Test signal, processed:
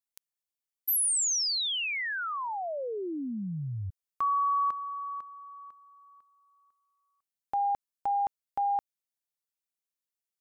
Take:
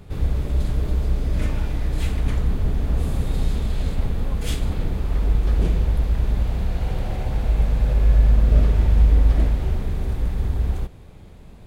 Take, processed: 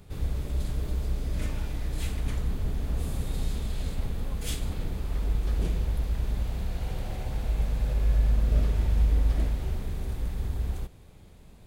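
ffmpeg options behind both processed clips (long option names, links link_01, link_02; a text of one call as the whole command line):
ffmpeg -i in.wav -af "highshelf=frequency=4000:gain=8.5,volume=-8dB" out.wav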